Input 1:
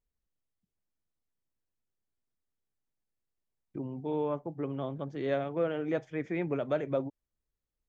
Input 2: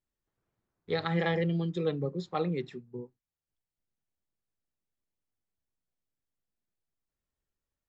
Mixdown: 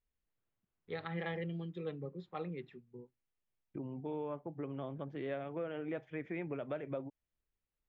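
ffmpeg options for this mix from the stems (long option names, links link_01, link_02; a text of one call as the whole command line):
ffmpeg -i stem1.wav -i stem2.wav -filter_complex "[0:a]acompressor=threshold=-36dB:ratio=2.5,volume=-3dB[link_01];[1:a]volume=-11dB[link_02];[link_01][link_02]amix=inputs=2:normalize=0,highshelf=frequency=4100:width_type=q:width=1.5:gain=-13" out.wav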